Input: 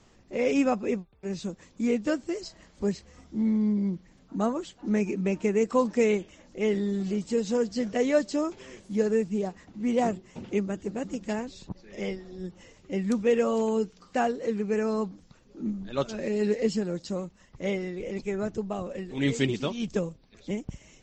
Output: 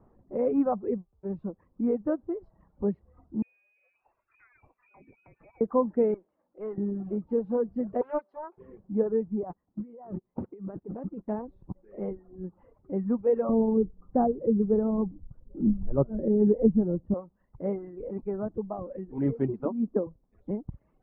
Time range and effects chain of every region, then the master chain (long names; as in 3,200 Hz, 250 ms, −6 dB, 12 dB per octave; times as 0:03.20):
0:03.42–0:05.61: mains-hum notches 60/120/180/240/300/360/420 Hz + downward compressor 10 to 1, threshold −36 dBFS + voice inversion scrambler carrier 2,700 Hz
0:06.14–0:06.78: high-pass filter 740 Hz 6 dB per octave + tube saturation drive 23 dB, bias 0.45
0:08.01–0:08.58: high-pass filter 770 Hz + highs frequency-modulated by the lows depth 0.34 ms
0:09.43–0:11.28: noise gate −40 dBFS, range −21 dB + parametric band 1,600 Hz +2.5 dB 2.2 octaves + compressor whose output falls as the input rises −37 dBFS
0:13.49–0:17.14: low-pass filter 1,100 Hz 6 dB per octave + spectral tilt −3.5 dB per octave
0:19.65–0:20.07: low-pass filter 2,200 Hz + low shelf with overshoot 180 Hz −11 dB, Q 3
whole clip: low-pass filter 1,100 Hz 24 dB per octave; reverb reduction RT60 1.1 s